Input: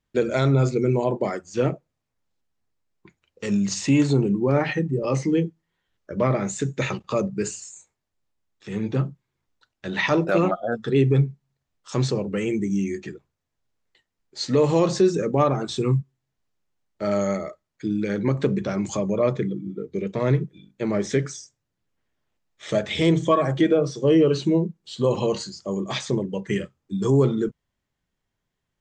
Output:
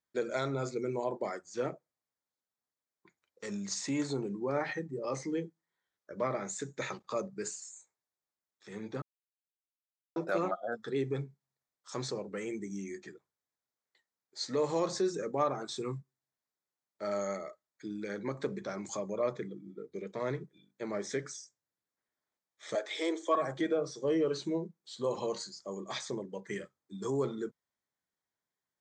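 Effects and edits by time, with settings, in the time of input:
0:09.02–0:10.16: silence
0:22.75–0:23.35: Butterworth high-pass 280 Hz 72 dB per octave
whole clip: high-pass filter 590 Hz 6 dB per octave; parametric band 2,800 Hz −13.5 dB 0.32 octaves; level −7 dB

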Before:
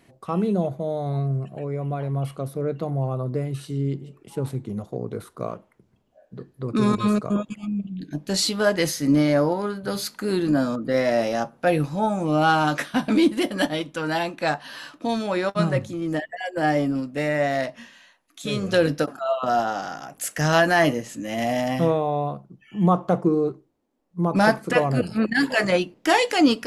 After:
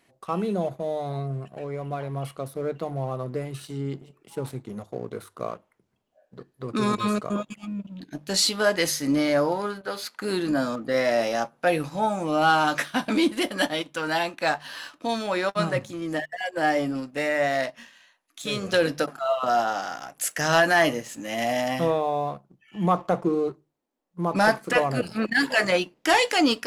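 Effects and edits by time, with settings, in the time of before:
0:09.81–0:10.22: bass and treble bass −13 dB, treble −9 dB
whole clip: low-shelf EQ 410 Hz −9 dB; mains-hum notches 50/100/150 Hz; leveller curve on the samples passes 1; level −2 dB

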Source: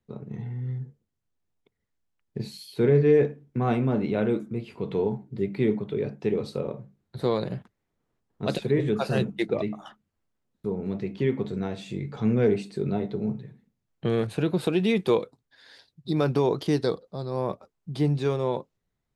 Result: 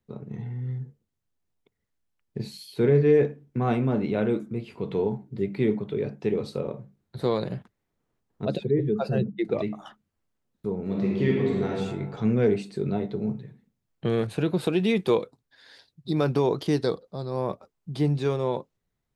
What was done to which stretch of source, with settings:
0:08.45–0:09.45: expanding power law on the bin magnitudes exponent 1.5
0:10.83–0:11.70: thrown reverb, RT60 1.5 s, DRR −3 dB

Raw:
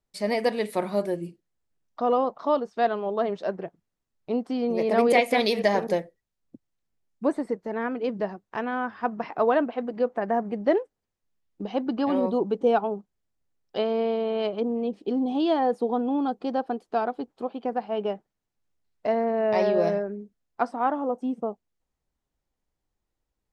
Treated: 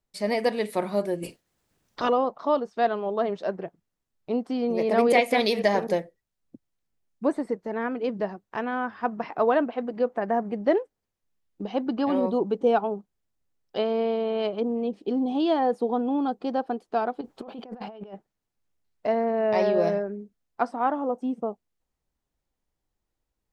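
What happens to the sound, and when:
0:01.22–0:02.08: ceiling on every frequency bin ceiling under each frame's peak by 26 dB
0:17.21–0:18.14: compressor whose output falls as the input rises −40 dBFS

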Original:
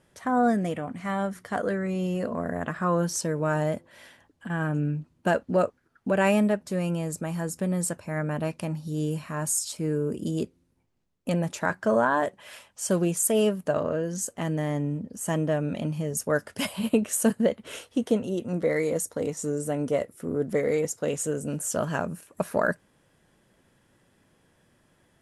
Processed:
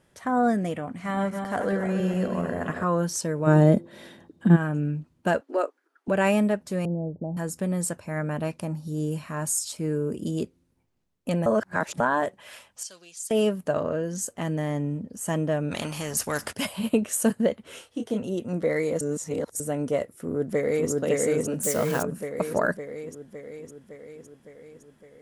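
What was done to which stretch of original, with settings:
0:00.89–0:02.84: feedback delay that plays each chunk backwards 139 ms, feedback 66%, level −6.5 dB
0:03.46–0:04.55: hollow resonant body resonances 200/340/3,700 Hz, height 15 dB → 18 dB, ringing for 30 ms
0:05.41–0:06.08: Chebyshev high-pass with heavy ripple 270 Hz, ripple 3 dB
0:06.85–0:07.37: Butterworth low-pass 790 Hz 48 dB per octave
0:08.58–0:09.12: dynamic equaliser 2,900 Hz, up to −7 dB, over −56 dBFS, Q 1
0:11.46–0:12.00: reverse
0:12.83–0:13.31: resonant band-pass 4,600 Hz, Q 2.2
0:15.71–0:16.53: every bin compressed towards the loudest bin 2 to 1
0:17.63–0:18.17: micro pitch shift up and down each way 24 cents → 10 cents
0:19.01–0:19.60: reverse
0:20.18–0:20.90: delay throw 560 ms, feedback 65%, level −0.5 dB
0:21.63–0:22.03: spike at every zero crossing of −26 dBFS

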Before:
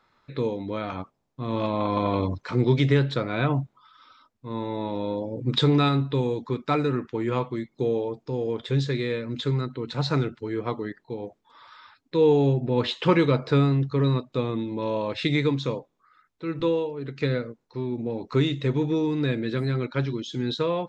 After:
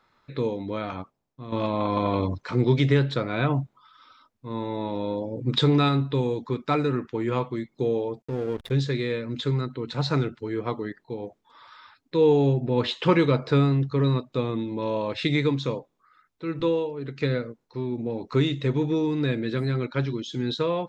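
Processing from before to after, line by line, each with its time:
0:00.83–0:01.52: fade out, to −9.5 dB
0:08.22–0:08.71: slack as between gear wheels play −31 dBFS

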